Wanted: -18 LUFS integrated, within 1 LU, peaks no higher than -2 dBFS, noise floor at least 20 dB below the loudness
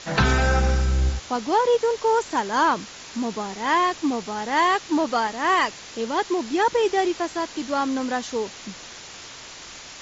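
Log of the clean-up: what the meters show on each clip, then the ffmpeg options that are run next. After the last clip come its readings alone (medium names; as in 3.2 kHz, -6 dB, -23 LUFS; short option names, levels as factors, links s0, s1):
noise floor -41 dBFS; noise floor target -43 dBFS; loudness -23.0 LUFS; peak level -8.5 dBFS; loudness target -18.0 LUFS
-> -af "afftdn=nr=6:nf=-41"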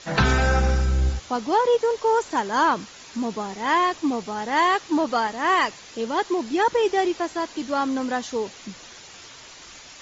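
noise floor -44 dBFS; loudness -23.0 LUFS; peak level -8.5 dBFS; loudness target -18.0 LUFS
-> -af "volume=1.78"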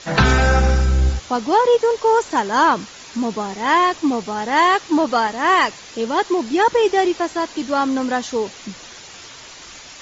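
loudness -18.0 LUFS; peak level -3.5 dBFS; noise floor -39 dBFS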